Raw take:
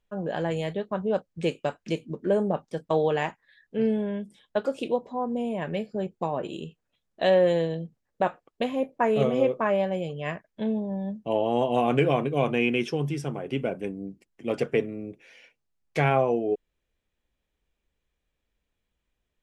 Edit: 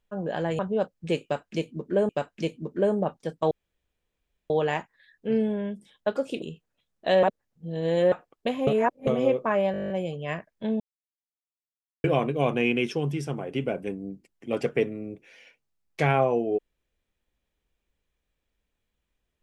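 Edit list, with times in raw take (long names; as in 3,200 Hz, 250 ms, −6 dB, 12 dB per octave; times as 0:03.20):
0:00.59–0:00.93: remove
0:01.57–0:02.43: repeat, 2 plays
0:02.99: splice in room tone 0.99 s
0:04.91–0:06.57: remove
0:07.38–0:08.27: reverse
0:08.82–0:09.22: reverse
0:09.87: stutter 0.02 s, 10 plays
0:10.77–0:12.01: silence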